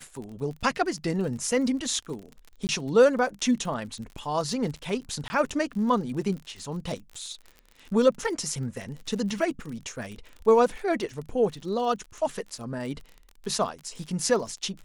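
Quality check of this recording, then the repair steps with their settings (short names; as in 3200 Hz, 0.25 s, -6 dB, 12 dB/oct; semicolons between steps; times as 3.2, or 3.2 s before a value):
crackle 42/s -35 dBFS
2.67–2.69 gap 19 ms
5.28–5.3 gap 20 ms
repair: de-click; interpolate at 2.67, 19 ms; interpolate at 5.28, 20 ms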